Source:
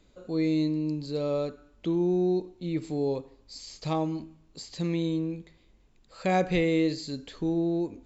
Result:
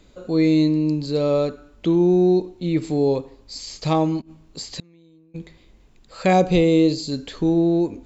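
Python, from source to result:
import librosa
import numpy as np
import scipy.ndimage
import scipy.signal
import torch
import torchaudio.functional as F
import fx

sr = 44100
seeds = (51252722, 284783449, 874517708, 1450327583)

y = fx.gate_flip(x, sr, shuts_db=-26.0, range_db=-33, at=(4.2, 5.34), fade=0.02)
y = fx.peak_eq(y, sr, hz=1800.0, db=-14.0, octaves=0.67, at=(6.33, 7.12))
y = y * 10.0 ** (9.0 / 20.0)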